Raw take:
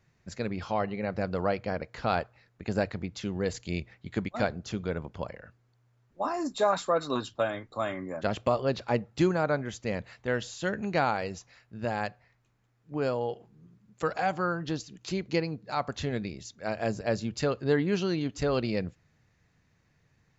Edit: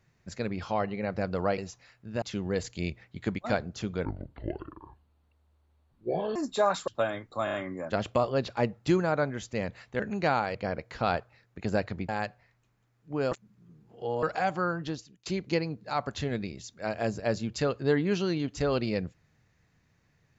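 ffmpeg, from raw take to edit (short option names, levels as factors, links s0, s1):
-filter_complex "[0:a]asplit=15[s0][s1][s2][s3][s4][s5][s6][s7][s8][s9][s10][s11][s12][s13][s14];[s0]atrim=end=1.582[s15];[s1]atrim=start=11.258:end=11.902[s16];[s2]atrim=start=3.118:end=4.954[s17];[s3]atrim=start=4.95:end=6.38,asetpts=PTS-STARTPTS,asetrate=27342,aresample=44100[s18];[s4]atrim=start=6.376:end=6.902[s19];[s5]atrim=start=7.278:end=7.882[s20];[s6]atrim=start=7.848:end=7.882[s21];[s7]atrim=start=7.848:end=7.882[s22];[s8]atrim=start=7.848:end=10.312[s23];[s9]atrim=start=10.708:end=11.262[s24];[s10]atrim=start=1.578:end=3.122[s25];[s11]atrim=start=11.898:end=13.132[s26];[s12]atrim=start=13.128:end=14.042,asetpts=PTS-STARTPTS,areverse[s27];[s13]atrim=start=14.038:end=15.07,asetpts=PTS-STARTPTS,afade=t=out:st=0.562:d=0.47:silence=0.0841395[s28];[s14]atrim=start=15.07,asetpts=PTS-STARTPTS,afade=t=in:d=0.004:c=hsin:silence=0.0841395[s29];[s15][s16]acrossfade=d=0.004:c1=hsin:c2=hsin[s30];[s30][s17]acrossfade=d=0.004:c1=hsin:c2=hsin[s31];[s31][s18]acrossfade=d=0.004:c1=hsin:c2=hsin[s32];[s32][s19]acrossfade=d=0.004:c1=hsin:c2=hsin[s33];[s33][s20]acrossfade=d=0.004:c1=hsin:c2=hsin[s34];[s34][s21]acrossfade=d=0.004:c1=hsin:c2=hsin[s35];[s35][s22]acrossfade=d=0.004:c1=hsin:c2=hsin[s36];[s36][s23]acrossfade=d=0.004:c1=hsin:c2=hsin[s37];[s37][s24]acrossfade=d=0.004:c1=hsin:c2=hsin[s38];[s38][s25]acrossfade=d=0.004:c1=hsin:c2=hsin[s39];[s39][s26]acrossfade=d=0.004:c1=hsin:c2=hsin[s40];[s40][s27]acrossfade=d=0.004:c1=hsin:c2=hsin[s41];[s28][s29]concat=n=2:v=0:a=1[s42];[s41][s42]acrossfade=d=0.004:c1=hsin:c2=hsin"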